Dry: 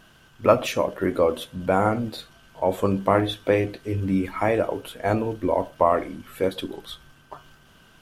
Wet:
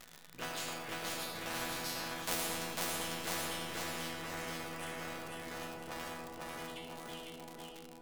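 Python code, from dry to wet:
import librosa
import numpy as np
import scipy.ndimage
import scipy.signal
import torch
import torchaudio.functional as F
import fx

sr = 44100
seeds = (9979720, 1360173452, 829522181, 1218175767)

p1 = fx.cycle_switch(x, sr, every=3, mode='muted')
p2 = fx.doppler_pass(p1, sr, speed_mps=47, closest_m=4.6, pass_at_s=2.3)
p3 = p2 + fx.echo_feedback(p2, sr, ms=498, feedback_pct=34, wet_db=-4, dry=0)
p4 = fx.rider(p3, sr, range_db=4, speed_s=0.5)
p5 = fx.resonator_bank(p4, sr, root=52, chord='fifth', decay_s=0.39)
p6 = fx.rev_freeverb(p5, sr, rt60_s=0.99, hf_ratio=0.3, predelay_ms=40, drr_db=4.0)
p7 = fx.dmg_crackle(p6, sr, seeds[0], per_s=130.0, level_db=-69.0)
p8 = fx.spectral_comp(p7, sr, ratio=4.0)
y = p8 * 10.0 ** (17.5 / 20.0)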